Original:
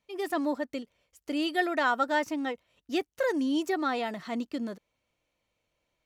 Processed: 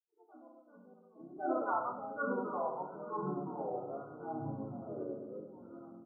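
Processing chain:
spectral dynamics exaggerated over time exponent 2
source passing by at 0:01.47, 38 m/s, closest 2.9 metres
high-pass filter 730 Hz 12 dB per octave
high-shelf EQ 4,400 Hz −9 dB
transient designer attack −2 dB, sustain +8 dB
double-tracking delay 47 ms −12.5 dB
feedback delay network reverb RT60 0.72 s, low-frequency decay 1.45×, high-frequency decay 0.75×, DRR −3 dB
delay with pitch and tempo change per echo 300 ms, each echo −5 semitones, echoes 3
high-frequency loss of the air 330 metres
pitch-shifted copies added −4 semitones −4 dB
linear-phase brick-wall band-stop 1,500–9,700 Hz
level +1 dB

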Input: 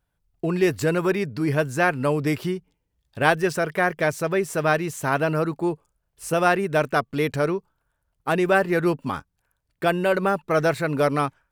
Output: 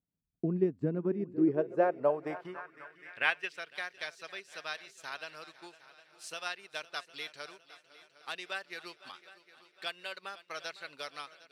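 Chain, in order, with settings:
transient designer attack +5 dB, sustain −9 dB
echo machine with several playback heads 253 ms, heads second and third, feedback 50%, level −18 dB
band-pass filter sweep 230 Hz → 4,100 Hz, 0:01.11–0:03.77
level −3 dB

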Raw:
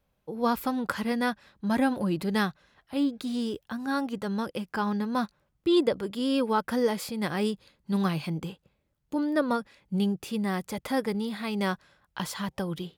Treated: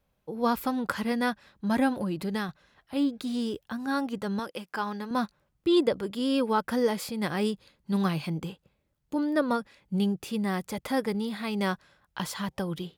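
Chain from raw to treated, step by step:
0:01.89–0:02.49: downward compressor, threshold −27 dBFS, peak gain reduction 6.5 dB
0:04.39–0:05.11: high-pass filter 470 Hz 6 dB per octave

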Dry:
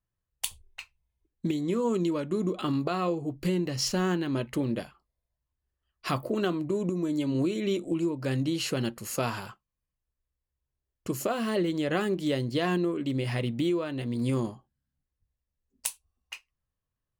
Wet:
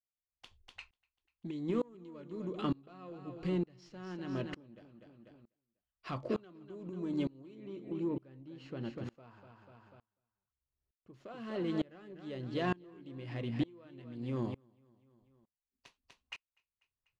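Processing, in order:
running median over 5 samples
0:07.55–0:11.14: high-shelf EQ 2,600 Hz −10 dB
soft clipping −19 dBFS, distortion −23 dB
high-frequency loss of the air 100 metres
repeating echo 246 ms, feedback 37%, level −10 dB
tremolo with a ramp in dB swelling 1.1 Hz, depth 29 dB
level −1.5 dB

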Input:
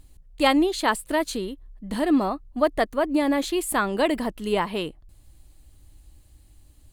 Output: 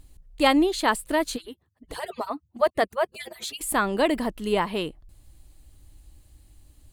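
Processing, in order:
0:01.36–0:03.61: harmonic-percussive split with one part muted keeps percussive

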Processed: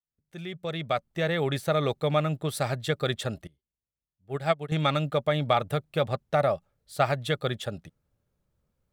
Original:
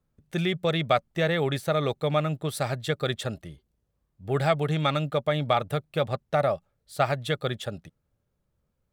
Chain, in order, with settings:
fade in at the beginning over 1.65 s
0:03.47–0:04.72: expander for the loud parts 2.5 to 1, over −33 dBFS

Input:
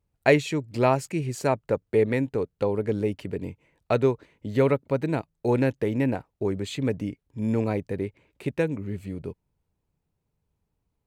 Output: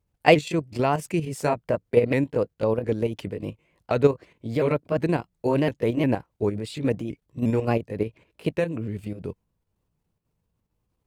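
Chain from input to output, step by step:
pitch shifter swept by a sawtooth +2.5 semitones, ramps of 355 ms
output level in coarse steps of 9 dB
level +6 dB

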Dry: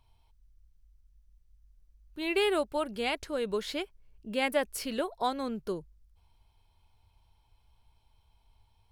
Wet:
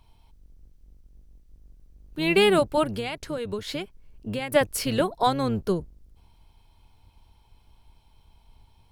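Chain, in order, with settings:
sub-octave generator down 1 octave, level −3 dB
0:02.93–0:04.52: downward compressor 16 to 1, threshold −35 dBFS, peak gain reduction 12.5 dB
level +8 dB

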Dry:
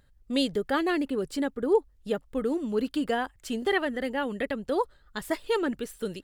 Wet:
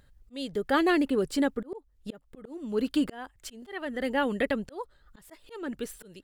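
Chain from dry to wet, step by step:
volume swells 507 ms
level +3 dB

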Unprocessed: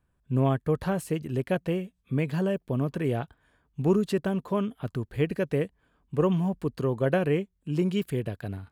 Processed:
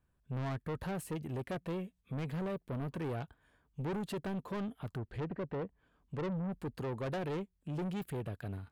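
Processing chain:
dynamic equaliser 5,400 Hz, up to −5 dB, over −54 dBFS, Q 0.91
0:04.97–0:06.52: treble cut that deepens with the level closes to 1,200 Hz, closed at −24 dBFS
soft clipping −30 dBFS, distortion −7 dB
level −4 dB

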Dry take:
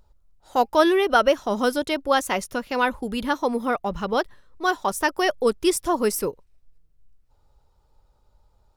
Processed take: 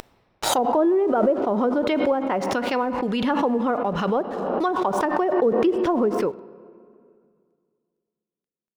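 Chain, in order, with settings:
Bessel high-pass filter 170 Hz, order 2
treble cut that deepens with the level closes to 570 Hz, closed at −17.5 dBFS
in parallel at +1 dB: brickwall limiter −22.5 dBFS, peak gain reduction 11.5 dB
on the sum: dead-zone distortion −54 dBFS
on a send at −15 dB: convolution reverb RT60 2.2 s, pre-delay 3 ms
on the sum: background raised ahead of every attack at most 29 dB per second
level −2 dB

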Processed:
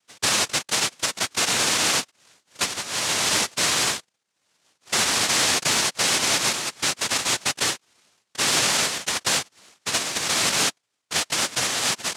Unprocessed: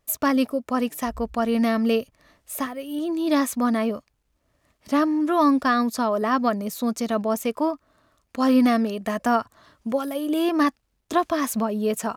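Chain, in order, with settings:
low-pass filter sweep 1,100 Hz → 4,200 Hz, 0:05.94–0:07.30
cochlear-implant simulation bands 1
brickwall limiter −11 dBFS, peak gain reduction 10 dB

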